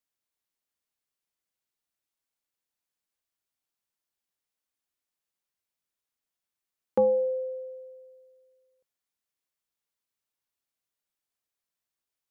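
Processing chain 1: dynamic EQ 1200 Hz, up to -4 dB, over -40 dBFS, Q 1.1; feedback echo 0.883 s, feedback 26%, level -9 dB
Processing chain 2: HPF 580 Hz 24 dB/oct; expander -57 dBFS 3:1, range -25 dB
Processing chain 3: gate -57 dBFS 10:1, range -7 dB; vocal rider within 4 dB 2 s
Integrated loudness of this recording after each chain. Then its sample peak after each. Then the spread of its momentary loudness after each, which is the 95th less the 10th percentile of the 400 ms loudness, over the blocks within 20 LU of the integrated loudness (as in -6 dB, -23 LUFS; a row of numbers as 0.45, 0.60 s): -30.0, -32.5, -28.5 LUFS; -15.5, -18.0, -17.0 dBFS; 22, 18, 18 LU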